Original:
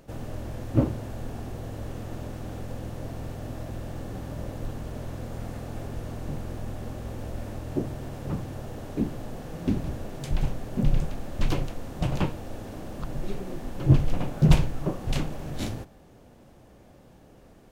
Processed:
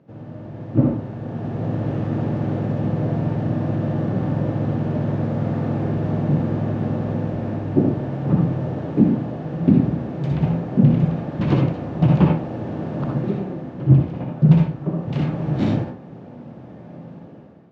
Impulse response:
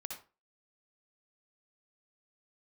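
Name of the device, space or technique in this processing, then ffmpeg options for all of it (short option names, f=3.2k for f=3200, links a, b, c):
far laptop microphone: -filter_complex "[0:a]aemphasis=mode=reproduction:type=riaa[a];[1:a]atrim=start_sample=2205[b];[a][b]afir=irnorm=-1:irlink=0,highpass=f=140:w=0.5412,highpass=f=140:w=1.3066,dynaudnorm=f=170:g=7:m=13.5dB,lowpass=6.6k,highshelf=f=7.2k:g=-12,volume=-1dB"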